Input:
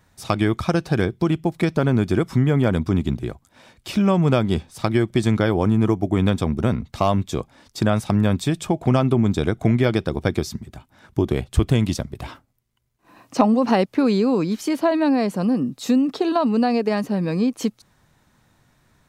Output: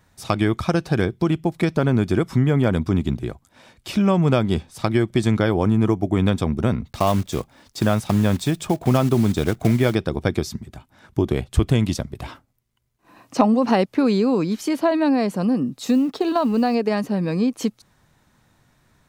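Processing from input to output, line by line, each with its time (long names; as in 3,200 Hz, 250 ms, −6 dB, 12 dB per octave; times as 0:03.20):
0:06.86–0:09.96: one scale factor per block 5 bits
0:15.85–0:16.75: mu-law and A-law mismatch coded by A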